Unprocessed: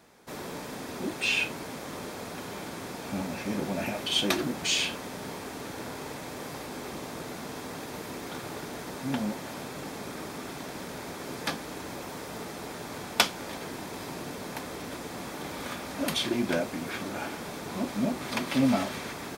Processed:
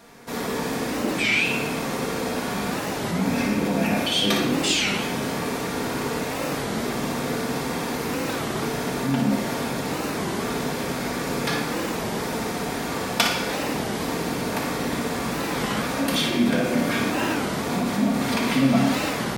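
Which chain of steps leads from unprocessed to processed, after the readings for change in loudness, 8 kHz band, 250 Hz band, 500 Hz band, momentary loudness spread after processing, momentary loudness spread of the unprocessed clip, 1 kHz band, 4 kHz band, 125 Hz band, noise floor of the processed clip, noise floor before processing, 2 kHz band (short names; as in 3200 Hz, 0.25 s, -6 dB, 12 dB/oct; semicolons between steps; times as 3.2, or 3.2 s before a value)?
+8.5 dB, +7.0 dB, +9.5 dB, +9.0 dB, 7 LU, 12 LU, +9.5 dB, +6.0 dB, +10.5 dB, -29 dBFS, -40 dBFS, +8.5 dB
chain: in parallel at -0.5 dB: negative-ratio compressor -35 dBFS, ratio -1; on the sum: flutter echo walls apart 10 m, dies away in 0.45 s; shoebox room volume 1100 m³, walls mixed, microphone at 1.7 m; record warp 33 1/3 rpm, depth 250 cents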